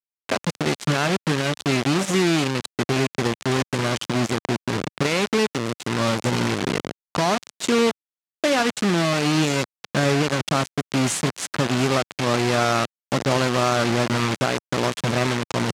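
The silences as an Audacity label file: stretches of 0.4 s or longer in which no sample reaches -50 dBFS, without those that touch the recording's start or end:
7.920000	8.440000	silence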